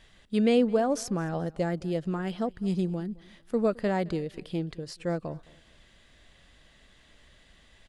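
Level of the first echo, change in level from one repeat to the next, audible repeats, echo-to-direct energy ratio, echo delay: -23.0 dB, -11.0 dB, 2, -22.5 dB, 215 ms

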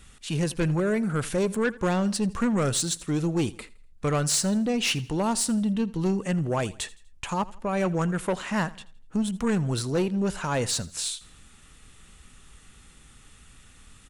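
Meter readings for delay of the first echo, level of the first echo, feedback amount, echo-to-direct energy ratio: 82 ms, -20.5 dB, 40%, -20.0 dB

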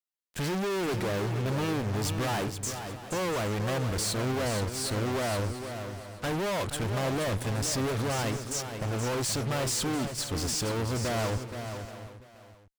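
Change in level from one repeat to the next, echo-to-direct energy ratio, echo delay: no regular repeats, -7.0 dB, 475 ms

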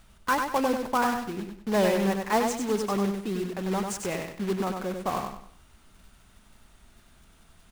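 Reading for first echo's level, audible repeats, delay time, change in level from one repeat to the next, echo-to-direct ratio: -5.0 dB, 4, 96 ms, -10.0 dB, -4.5 dB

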